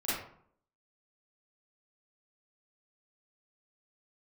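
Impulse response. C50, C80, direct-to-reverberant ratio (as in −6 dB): −2.5 dB, 4.5 dB, −12.0 dB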